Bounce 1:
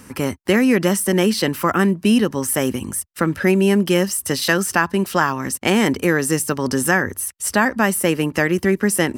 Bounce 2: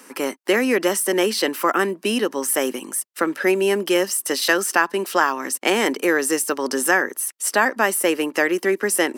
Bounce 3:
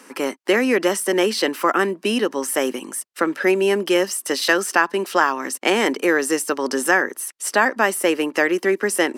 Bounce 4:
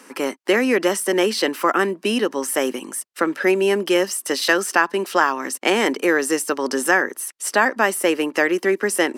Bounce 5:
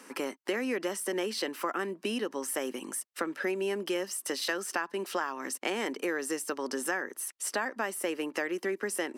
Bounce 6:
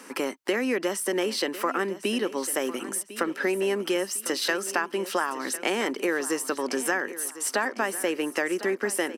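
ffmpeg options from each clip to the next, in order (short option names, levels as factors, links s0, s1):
-af "highpass=f=300:w=0.5412,highpass=f=300:w=1.3066"
-af "highshelf=f=11000:g=-11,volume=1.12"
-af anull
-af "acompressor=threshold=0.0447:ratio=2.5,volume=0.531"
-af "aecho=1:1:1052|2104|3156:0.178|0.0658|0.0243,volume=1.88"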